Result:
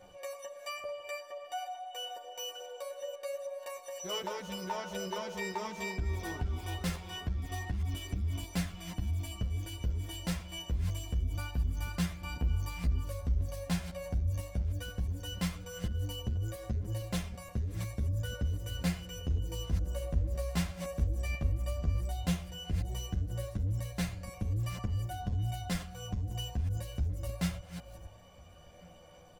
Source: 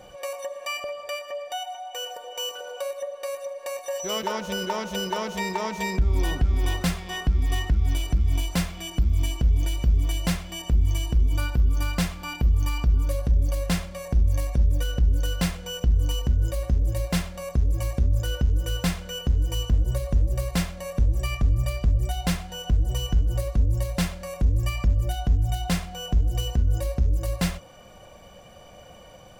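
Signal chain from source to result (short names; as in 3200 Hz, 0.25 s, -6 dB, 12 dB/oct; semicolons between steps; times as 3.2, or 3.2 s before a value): reverse delay 0.46 s, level -12 dB; chorus voices 2, 0.12 Hz, delay 11 ms, depth 1.5 ms; outdoor echo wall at 240 m, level -24 dB; gain -6.5 dB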